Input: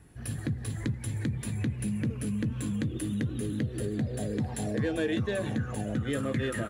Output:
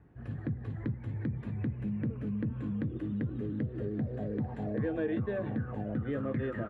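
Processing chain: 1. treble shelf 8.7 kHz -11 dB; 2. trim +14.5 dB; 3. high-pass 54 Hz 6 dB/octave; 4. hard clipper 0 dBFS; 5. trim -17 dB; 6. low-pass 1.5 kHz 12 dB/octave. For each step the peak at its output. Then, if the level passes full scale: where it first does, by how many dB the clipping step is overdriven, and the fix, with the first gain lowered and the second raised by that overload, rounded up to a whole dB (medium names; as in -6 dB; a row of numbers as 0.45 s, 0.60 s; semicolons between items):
-18.5 dBFS, -4.0 dBFS, -4.5 dBFS, -4.5 dBFS, -21.5 dBFS, -22.0 dBFS; nothing clips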